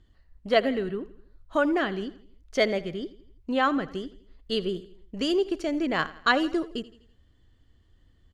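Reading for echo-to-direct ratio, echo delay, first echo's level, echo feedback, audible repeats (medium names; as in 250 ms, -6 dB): -17.0 dB, 83 ms, -18.0 dB, 48%, 3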